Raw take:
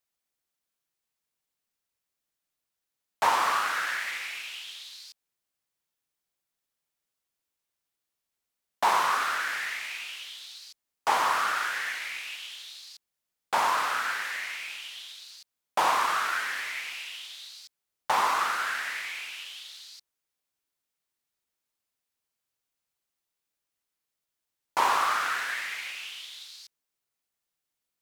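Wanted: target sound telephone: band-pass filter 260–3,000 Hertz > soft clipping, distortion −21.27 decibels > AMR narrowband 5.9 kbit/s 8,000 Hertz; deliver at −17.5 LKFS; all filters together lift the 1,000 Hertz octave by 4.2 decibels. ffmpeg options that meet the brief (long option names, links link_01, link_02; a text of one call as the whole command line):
ffmpeg -i in.wav -af "highpass=260,lowpass=3000,equalizer=frequency=1000:width_type=o:gain=5,asoftclip=threshold=-11.5dB,volume=11dB" -ar 8000 -c:a libopencore_amrnb -b:a 5900 out.amr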